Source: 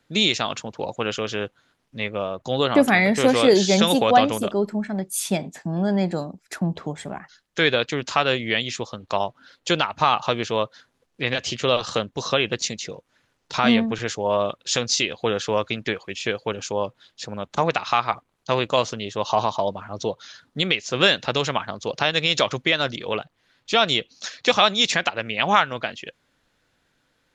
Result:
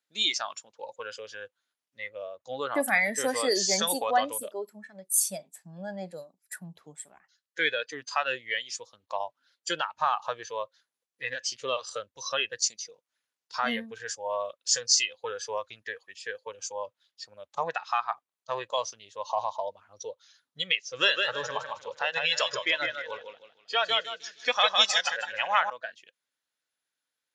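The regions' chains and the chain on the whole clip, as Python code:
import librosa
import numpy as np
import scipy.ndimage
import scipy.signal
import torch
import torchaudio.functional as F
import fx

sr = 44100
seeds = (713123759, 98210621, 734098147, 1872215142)

y = fx.chain(x, sr, fx.high_shelf(hz=6700.0, db=-6.5),
    fx.echo_warbled(ms=156, feedback_pct=46, rate_hz=2.8, cents=53, wet_db=-3.5), at=(20.77, 25.7))
y = fx.noise_reduce_blind(y, sr, reduce_db=15)
y = fx.highpass(y, sr, hz=850.0, slope=6)
y = fx.high_shelf(y, sr, hz=4200.0, db=9.5)
y = y * 10.0 ** (-5.0 / 20.0)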